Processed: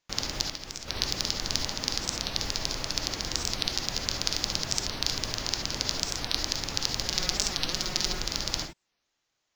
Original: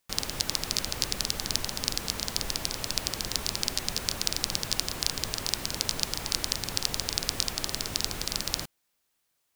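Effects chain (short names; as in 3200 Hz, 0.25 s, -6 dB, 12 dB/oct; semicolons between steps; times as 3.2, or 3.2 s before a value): steep low-pass 7100 Hz 96 dB/oct; 0.41–0.9 compressor 10:1, threshold -33 dBFS, peak gain reduction 12 dB; 7.06–8.2 comb 5.5 ms, depth 65%; short-mantissa float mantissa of 2-bit; non-linear reverb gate 90 ms rising, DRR 5.5 dB; record warp 45 rpm, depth 250 cents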